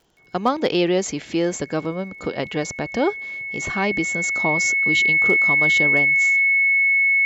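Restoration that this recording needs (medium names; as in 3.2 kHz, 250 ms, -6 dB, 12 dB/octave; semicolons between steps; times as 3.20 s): clip repair -9 dBFS; de-click; band-stop 2.2 kHz, Q 30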